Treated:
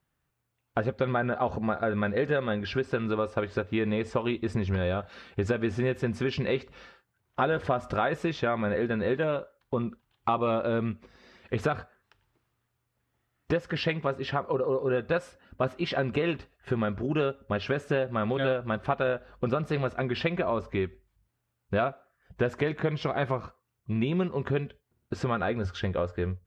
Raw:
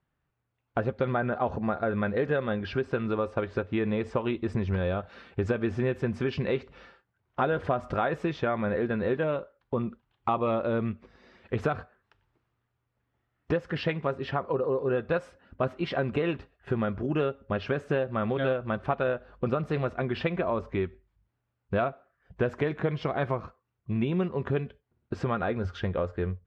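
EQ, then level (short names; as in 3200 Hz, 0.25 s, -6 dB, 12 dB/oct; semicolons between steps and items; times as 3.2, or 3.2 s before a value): high shelf 3900 Hz +10 dB; 0.0 dB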